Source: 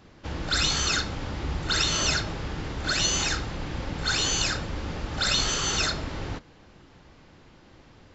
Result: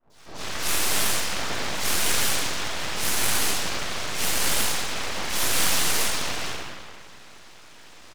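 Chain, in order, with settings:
brickwall limiter −19.5 dBFS, peak gain reduction 8 dB
flanger 1.1 Hz, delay 4.3 ms, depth 9.1 ms, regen +32%
gate on every frequency bin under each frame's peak −10 dB weak
high-pass filter 68 Hz 24 dB per octave
high-shelf EQ 2,800 Hz +11.5 dB
three-band delay without the direct sound lows, highs, mids 100/140 ms, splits 550/3,500 Hz
convolution reverb RT60 2.0 s, pre-delay 3 ms, DRR −18.5 dB
full-wave rectification
level −6 dB

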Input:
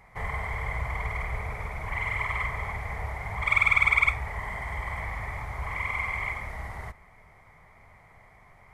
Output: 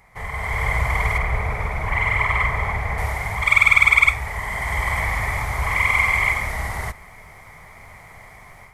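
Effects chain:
high-shelf EQ 3,600 Hz +8 dB, from 0:01.18 −2 dB, from 0:02.98 +11.5 dB
automatic gain control gain up to 10 dB

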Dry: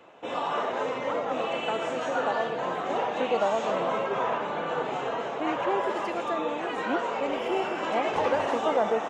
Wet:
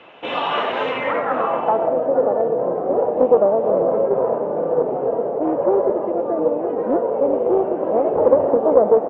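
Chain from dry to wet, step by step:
low-pass filter sweep 3,000 Hz → 520 Hz, 0:00.87–0:02.08
highs frequency-modulated by the lows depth 0.16 ms
level +6.5 dB

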